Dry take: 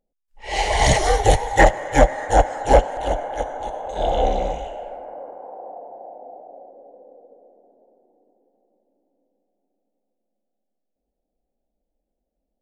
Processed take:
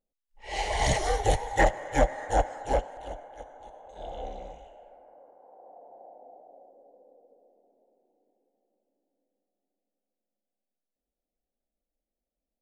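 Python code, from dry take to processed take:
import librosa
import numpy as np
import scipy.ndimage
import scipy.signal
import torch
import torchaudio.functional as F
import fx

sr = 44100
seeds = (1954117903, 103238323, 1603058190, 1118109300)

y = fx.gain(x, sr, db=fx.line((2.36, -9.0), (3.31, -18.5), (5.36, -18.5), (5.99, -11.0)))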